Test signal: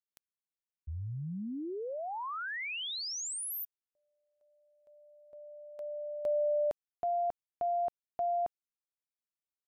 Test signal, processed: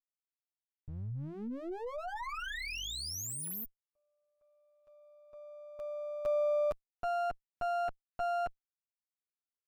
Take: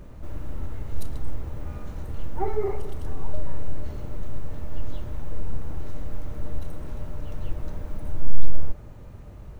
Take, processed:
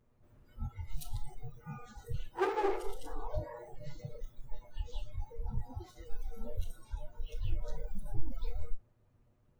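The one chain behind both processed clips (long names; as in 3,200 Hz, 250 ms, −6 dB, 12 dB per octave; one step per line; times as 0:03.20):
lower of the sound and its delayed copy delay 8.3 ms
noise reduction from a noise print of the clip's start 24 dB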